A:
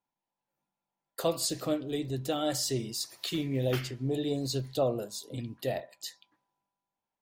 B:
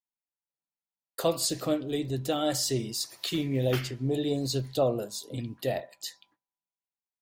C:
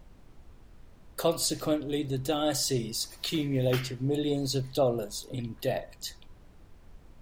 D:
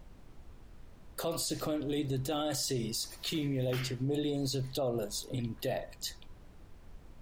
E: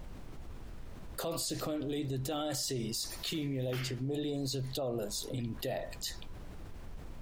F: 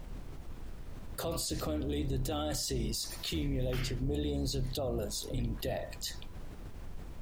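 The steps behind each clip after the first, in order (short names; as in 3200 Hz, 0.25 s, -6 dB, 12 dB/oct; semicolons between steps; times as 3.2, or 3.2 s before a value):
gate with hold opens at -49 dBFS; gain +2.5 dB
added noise brown -50 dBFS
limiter -25 dBFS, peak gain reduction 10.5 dB
fast leveller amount 50%; gain -3.5 dB
octaver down 2 oct, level +1 dB; added noise white -73 dBFS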